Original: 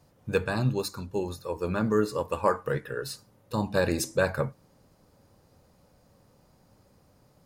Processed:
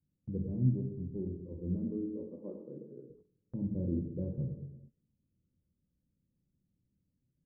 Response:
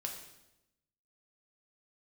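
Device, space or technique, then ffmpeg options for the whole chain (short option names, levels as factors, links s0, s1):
next room: -filter_complex "[0:a]asettb=1/sr,asplit=3[s0][s1][s2];[s0]atrim=end=1.774[s3];[s1]atrim=start=1.77:end=3.1,asetpts=PTS-STARTPTS,afade=t=in:d=0.004:c=qsin,afade=t=out:st=1.326:d=0.004:c=qsin,highpass=f=230:w=0.5412,highpass=f=230:w=1.3066[s4];[s2]atrim=start=3.096[s5];[s3][s4]acrossfade=d=0.004:c1=hsin:c2=qsin[s6];[s6][s5]acrossfade=d=0.004:c1=qsin:c2=hsin,lowpass=f=310:w=0.5412,lowpass=f=310:w=1.3066[s7];[1:a]atrim=start_sample=2205[s8];[s7][s8]afir=irnorm=-1:irlink=0,agate=range=0.178:threshold=0.00224:ratio=16:detection=peak,volume=0.841"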